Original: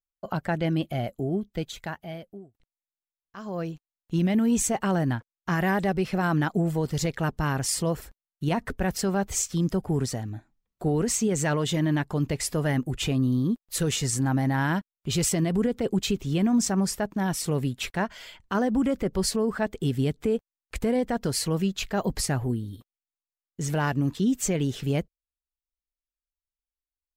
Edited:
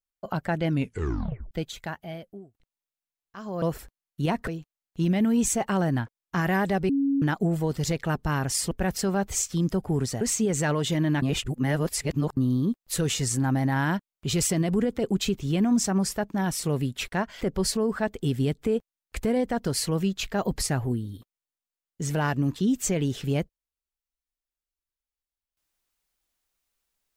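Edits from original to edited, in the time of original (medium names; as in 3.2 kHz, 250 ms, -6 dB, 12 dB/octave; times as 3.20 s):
0.68 s: tape stop 0.83 s
6.03–6.36 s: bleep 277 Hz -20.5 dBFS
7.85–8.71 s: move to 3.62 s
10.21–11.03 s: delete
12.04–13.19 s: reverse
18.23–19.00 s: delete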